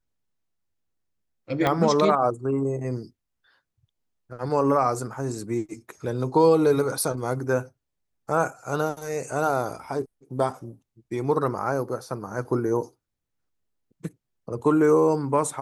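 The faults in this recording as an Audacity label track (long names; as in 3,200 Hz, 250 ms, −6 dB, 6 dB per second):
1.670000	1.670000	click −10 dBFS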